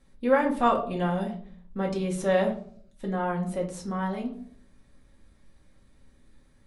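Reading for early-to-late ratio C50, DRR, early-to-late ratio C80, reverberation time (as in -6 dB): 10.5 dB, -1.5 dB, 14.5 dB, 0.55 s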